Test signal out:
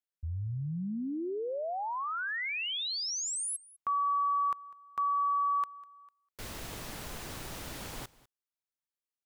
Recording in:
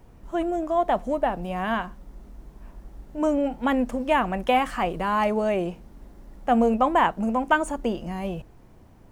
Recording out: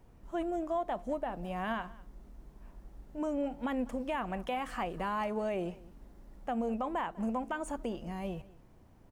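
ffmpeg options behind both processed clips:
-af "alimiter=limit=0.133:level=0:latency=1:release=161,aecho=1:1:199:0.0841,volume=0.398"

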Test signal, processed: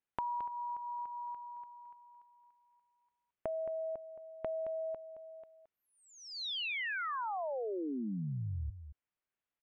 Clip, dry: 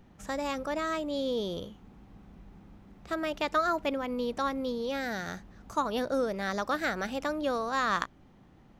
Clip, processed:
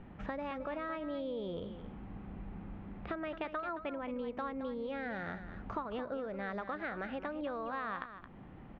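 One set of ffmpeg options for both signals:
-filter_complex "[0:a]lowpass=f=2800:w=0.5412,lowpass=f=2800:w=1.3066,acompressor=threshold=0.00708:ratio=6,asplit=2[s0][s1];[s1]aecho=0:1:220:0.282[s2];[s0][s2]amix=inputs=2:normalize=0,volume=1.88"

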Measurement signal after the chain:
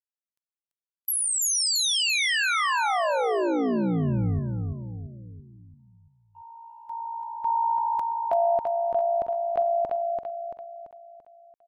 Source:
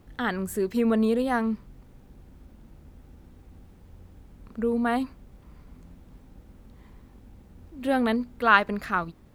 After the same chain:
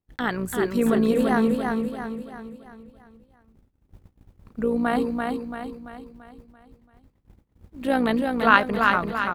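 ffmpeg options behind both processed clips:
-af "tremolo=f=58:d=0.519,agate=range=0.0251:threshold=0.00447:ratio=16:detection=peak,aecho=1:1:338|676|1014|1352|1690|2028:0.631|0.297|0.139|0.0655|0.0308|0.0145,volume=1.58"

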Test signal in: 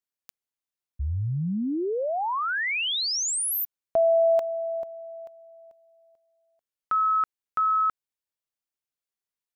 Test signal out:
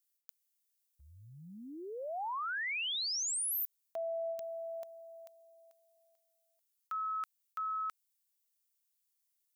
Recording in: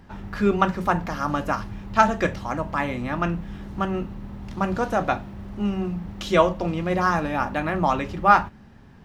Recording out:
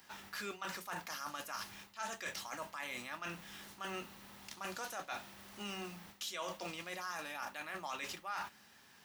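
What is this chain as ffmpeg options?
-af "aderivative,areverse,acompressor=threshold=0.00708:ratio=8:attack=0.29:release=219:knee=1:detection=peak,areverse,volume=2.66"

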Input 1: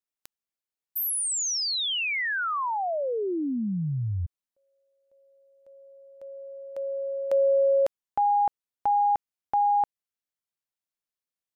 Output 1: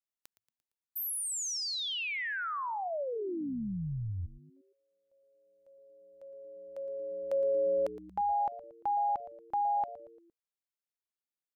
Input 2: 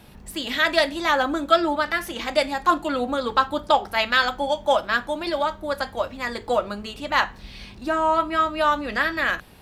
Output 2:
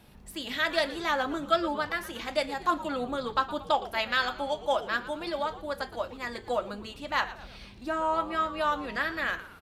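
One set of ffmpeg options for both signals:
-filter_complex "[0:a]asplit=5[s0][s1][s2][s3][s4];[s1]adelay=115,afreqshift=-120,volume=0.168[s5];[s2]adelay=230,afreqshift=-240,volume=0.0822[s6];[s3]adelay=345,afreqshift=-360,volume=0.0403[s7];[s4]adelay=460,afreqshift=-480,volume=0.0197[s8];[s0][s5][s6][s7][s8]amix=inputs=5:normalize=0,volume=0.422"

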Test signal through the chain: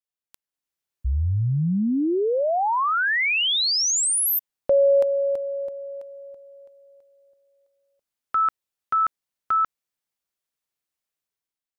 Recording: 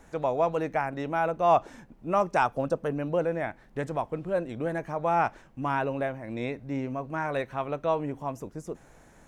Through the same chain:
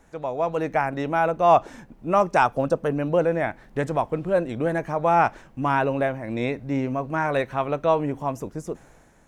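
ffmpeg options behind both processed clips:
-af "dynaudnorm=f=160:g=7:m=2.82,volume=0.75"

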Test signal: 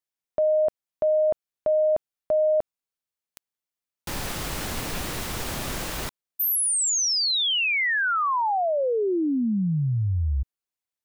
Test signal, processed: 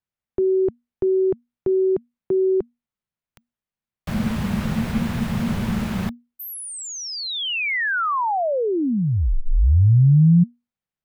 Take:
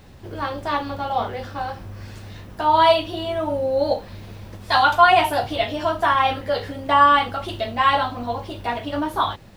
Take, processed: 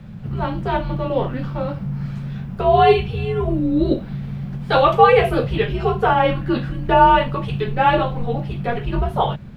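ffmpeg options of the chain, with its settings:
-af "bass=f=250:g=9,treble=f=4000:g=-12,afreqshift=-240,volume=1.26"

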